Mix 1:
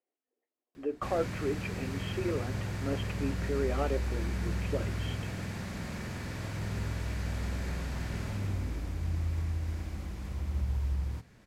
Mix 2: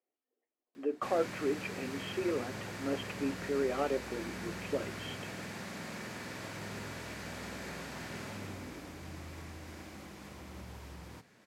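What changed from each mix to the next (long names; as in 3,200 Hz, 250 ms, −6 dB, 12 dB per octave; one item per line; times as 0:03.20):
background: add Bessel high-pass filter 270 Hz, order 2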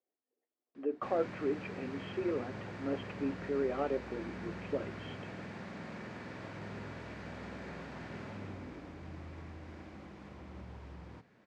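master: add head-to-tape spacing loss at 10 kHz 24 dB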